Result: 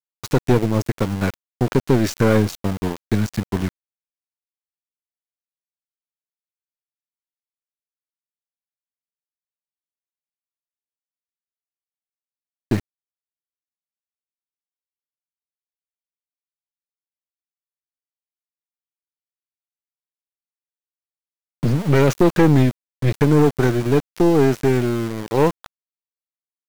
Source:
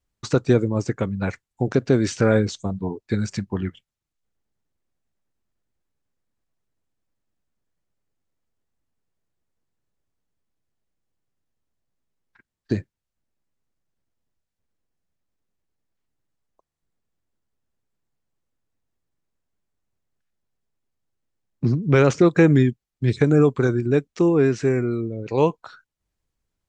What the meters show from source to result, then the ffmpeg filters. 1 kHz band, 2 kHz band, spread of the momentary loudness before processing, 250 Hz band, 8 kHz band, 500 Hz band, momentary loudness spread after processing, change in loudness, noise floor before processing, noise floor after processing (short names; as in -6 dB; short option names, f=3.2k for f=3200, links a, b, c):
+5.0 dB, +1.0 dB, 12 LU, +2.0 dB, +3.0 dB, +1.0 dB, 10 LU, +2.0 dB, -85 dBFS, under -85 dBFS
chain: -af "aeval=exprs='(tanh(5.62*val(0)+0.55)-tanh(0.55))/5.62':c=same,aeval=exprs='val(0)*gte(abs(val(0)),0.0266)':c=same,volume=6dB"